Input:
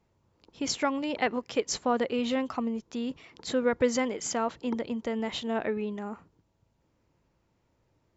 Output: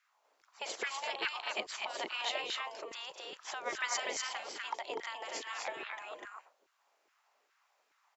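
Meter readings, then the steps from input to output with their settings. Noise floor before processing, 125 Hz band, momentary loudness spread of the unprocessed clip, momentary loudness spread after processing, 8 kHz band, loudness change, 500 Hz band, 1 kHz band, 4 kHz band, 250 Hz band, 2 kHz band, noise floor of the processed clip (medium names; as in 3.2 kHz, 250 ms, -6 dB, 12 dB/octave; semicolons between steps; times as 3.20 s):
-73 dBFS, under -25 dB, 9 LU, 10 LU, no reading, -8.0 dB, -14.0 dB, -6.0 dB, -0.5 dB, -26.0 dB, -1.0 dB, -76 dBFS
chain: spectral gate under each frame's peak -15 dB weak; loudspeakers at several distances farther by 72 m -11 dB, 85 m -3 dB; LFO high-pass saw down 2.4 Hz 350–1600 Hz; dynamic bell 1.4 kHz, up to -7 dB, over -50 dBFS, Q 1.3; trim +2.5 dB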